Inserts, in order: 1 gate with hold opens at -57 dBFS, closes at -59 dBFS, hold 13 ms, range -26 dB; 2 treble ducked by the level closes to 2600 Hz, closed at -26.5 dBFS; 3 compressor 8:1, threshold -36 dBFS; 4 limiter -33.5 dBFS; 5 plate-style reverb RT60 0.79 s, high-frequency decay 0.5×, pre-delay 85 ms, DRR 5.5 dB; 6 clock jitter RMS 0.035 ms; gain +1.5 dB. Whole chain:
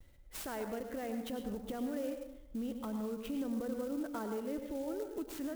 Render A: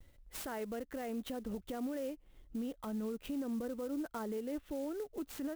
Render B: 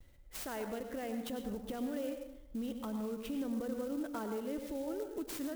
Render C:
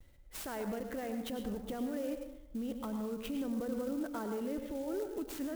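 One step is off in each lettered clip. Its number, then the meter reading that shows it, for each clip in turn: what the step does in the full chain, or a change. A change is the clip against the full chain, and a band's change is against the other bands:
5, crest factor change -4.0 dB; 2, 4 kHz band +1.5 dB; 3, mean gain reduction 9.0 dB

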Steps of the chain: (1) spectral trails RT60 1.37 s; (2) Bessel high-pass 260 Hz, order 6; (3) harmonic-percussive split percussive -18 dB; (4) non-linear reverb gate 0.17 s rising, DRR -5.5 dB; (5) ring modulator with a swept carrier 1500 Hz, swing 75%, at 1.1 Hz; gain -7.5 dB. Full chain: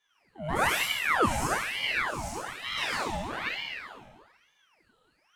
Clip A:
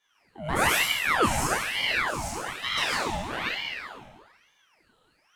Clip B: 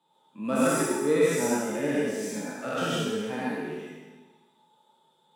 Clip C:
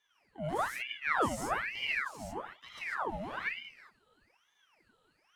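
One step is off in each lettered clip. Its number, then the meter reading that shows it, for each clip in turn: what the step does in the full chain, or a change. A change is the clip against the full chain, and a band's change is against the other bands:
3, 8 kHz band +3.0 dB; 5, momentary loudness spread change +3 LU; 1, 8 kHz band -5.0 dB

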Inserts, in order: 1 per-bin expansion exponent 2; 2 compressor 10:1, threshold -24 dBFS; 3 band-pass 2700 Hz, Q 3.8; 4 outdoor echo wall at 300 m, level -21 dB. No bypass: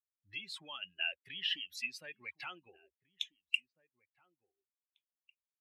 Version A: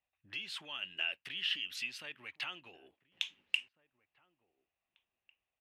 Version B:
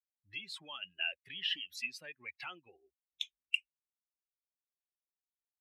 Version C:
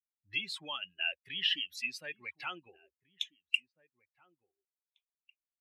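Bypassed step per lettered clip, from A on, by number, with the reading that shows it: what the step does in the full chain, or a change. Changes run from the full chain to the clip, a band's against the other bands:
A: 1, loudness change +1.0 LU; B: 4, echo-to-direct -26.5 dB to none; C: 2, mean gain reduction 3.5 dB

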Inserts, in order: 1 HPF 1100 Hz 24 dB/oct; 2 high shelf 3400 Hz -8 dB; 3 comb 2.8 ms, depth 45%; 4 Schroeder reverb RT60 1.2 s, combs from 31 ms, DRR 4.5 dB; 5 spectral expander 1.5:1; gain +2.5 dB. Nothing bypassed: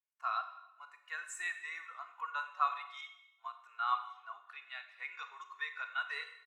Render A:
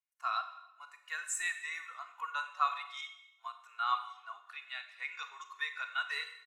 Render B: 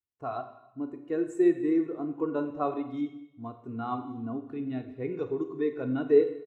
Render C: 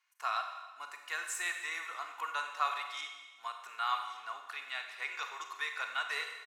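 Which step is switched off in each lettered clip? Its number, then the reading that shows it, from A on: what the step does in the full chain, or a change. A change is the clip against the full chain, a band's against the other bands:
2, loudness change +2.0 LU; 1, crest factor change -4.0 dB; 5, 1 kHz band -6.5 dB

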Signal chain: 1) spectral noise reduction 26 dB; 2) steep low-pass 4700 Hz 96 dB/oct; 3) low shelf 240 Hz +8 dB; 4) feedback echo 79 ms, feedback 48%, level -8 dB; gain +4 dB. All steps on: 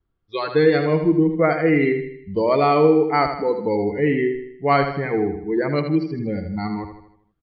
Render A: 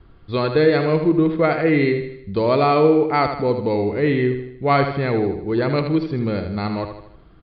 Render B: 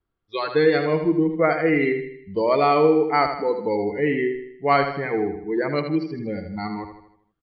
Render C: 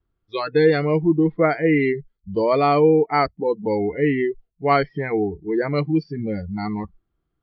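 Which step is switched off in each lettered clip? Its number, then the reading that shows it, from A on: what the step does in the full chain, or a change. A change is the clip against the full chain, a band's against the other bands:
1, 4 kHz band +2.5 dB; 3, 125 Hz band -5.0 dB; 4, echo-to-direct -7.0 dB to none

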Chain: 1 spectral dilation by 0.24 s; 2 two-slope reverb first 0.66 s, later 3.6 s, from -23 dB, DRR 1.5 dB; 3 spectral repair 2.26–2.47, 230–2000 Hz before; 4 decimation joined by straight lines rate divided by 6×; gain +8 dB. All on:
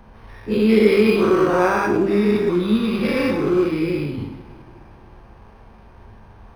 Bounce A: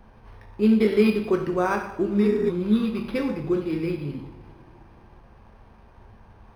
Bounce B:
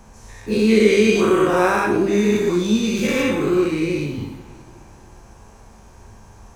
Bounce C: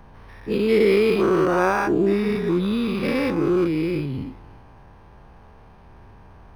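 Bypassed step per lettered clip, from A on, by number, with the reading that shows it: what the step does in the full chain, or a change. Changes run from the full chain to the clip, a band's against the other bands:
1, 250 Hz band +3.5 dB; 4, 4 kHz band +3.5 dB; 2, crest factor change -2.5 dB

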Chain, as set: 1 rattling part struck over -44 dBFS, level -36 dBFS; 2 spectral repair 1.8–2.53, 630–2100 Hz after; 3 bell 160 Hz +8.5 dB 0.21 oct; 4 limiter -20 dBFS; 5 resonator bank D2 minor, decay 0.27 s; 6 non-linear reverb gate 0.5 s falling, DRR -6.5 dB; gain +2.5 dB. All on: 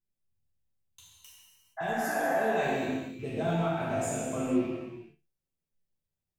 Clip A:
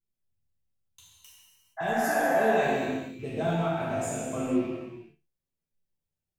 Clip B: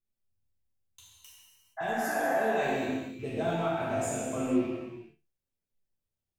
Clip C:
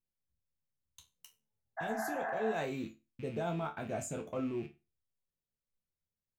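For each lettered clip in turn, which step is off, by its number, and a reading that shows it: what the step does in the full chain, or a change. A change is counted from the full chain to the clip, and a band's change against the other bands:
4, mean gain reduction 1.5 dB; 3, 125 Hz band -3.5 dB; 6, momentary loudness spread change -1 LU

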